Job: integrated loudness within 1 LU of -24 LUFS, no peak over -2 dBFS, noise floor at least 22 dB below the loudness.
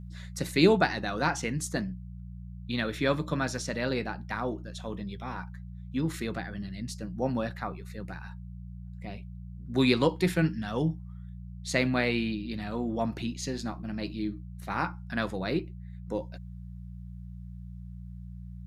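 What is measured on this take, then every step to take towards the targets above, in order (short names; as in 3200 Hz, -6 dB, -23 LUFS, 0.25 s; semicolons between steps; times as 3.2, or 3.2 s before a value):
hum 60 Hz; harmonics up to 180 Hz; hum level -39 dBFS; loudness -31.0 LUFS; peak -7.0 dBFS; loudness target -24.0 LUFS
-> de-hum 60 Hz, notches 3; gain +7 dB; limiter -2 dBFS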